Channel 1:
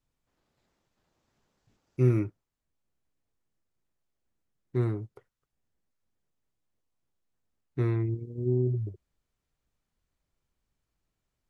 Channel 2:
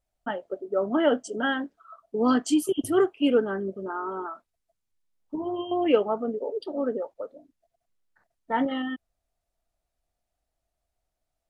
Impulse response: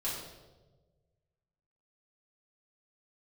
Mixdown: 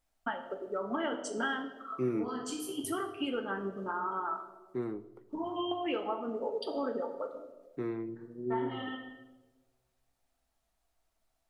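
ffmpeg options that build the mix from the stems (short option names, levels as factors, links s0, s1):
-filter_complex "[0:a]highpass=f=190:w=0.5412,highpass=f=190:w=1.3066,highshelf=f=2300:g=-9,volume=0.631,asplit=3[s0][s1][s2];[s1]volume=0.133[s3];[1:a]lowshelf=f=700:t=q:w=1.5:g=-6,acompressor=threshold=0.0178:ratio=10,volume=1.12,asplit=2[s4][s5];[s5]volume=0.501[s6];[s2]apad=whole_len=507061[s7];[s4][s7]sidechaincompress=threshold=0.00501:ratio=8:attack=47:release=613[s8];[2:a]atrim=start_sample=2205[s9];[s3][s6]amix=inputs=2:normalize=0[s10];[s10][s9]afir=irnorm=-1:irlink=0[s11];[s0][s8][s11]amix=inputs=3:normalize=0"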